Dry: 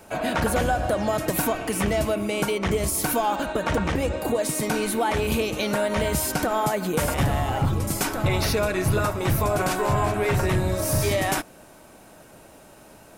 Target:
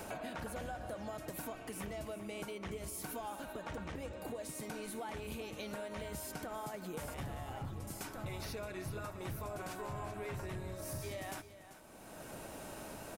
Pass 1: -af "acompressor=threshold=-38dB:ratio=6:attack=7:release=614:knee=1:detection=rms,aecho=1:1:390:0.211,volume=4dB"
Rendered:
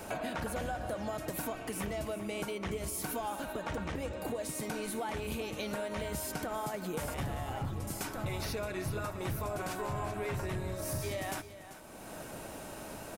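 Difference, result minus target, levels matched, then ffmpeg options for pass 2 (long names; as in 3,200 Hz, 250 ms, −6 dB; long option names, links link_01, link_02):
downward compressor: peak gain reduction −6 dB
-af "acompressor=threshold=-45.5dB:ratio=6:attack=7:release=614:knee=1:detection=rms,aecho=1:1:390:0.211,volume=4dB"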